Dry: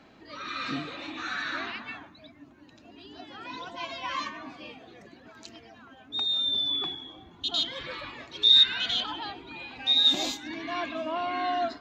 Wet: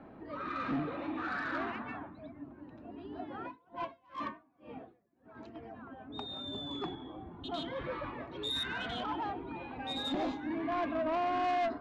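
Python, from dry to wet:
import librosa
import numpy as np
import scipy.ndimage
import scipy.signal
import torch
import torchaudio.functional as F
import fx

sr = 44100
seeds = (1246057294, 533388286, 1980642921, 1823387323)

y = scipy.signal.sosfilt(scipy.signal.butter(2, 1100.0, 'lowpass', fs=sr, output='sos'), x)
y = 10.0 ** (-33.0 / 20.0) * np.tanh(y / 10.0 ** (-33.0 / 20.0))
y = fx.tremolo_db(y, sr, hz=fx.line((3.44, 2.9), (5.54, 1.3)), depth_db=32, at=(3.44, 5.54), fade=0.02)
y = y * 10.0 ** (4.5 / 20.0)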